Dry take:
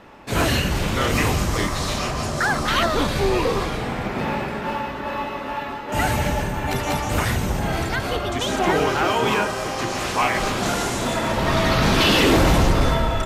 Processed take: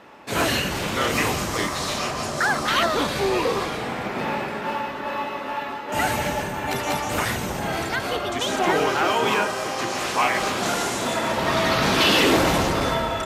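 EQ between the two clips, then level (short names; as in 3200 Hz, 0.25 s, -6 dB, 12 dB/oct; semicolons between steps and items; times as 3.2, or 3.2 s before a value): HPF 260 Hz 6 dB/oct; 0.0 dB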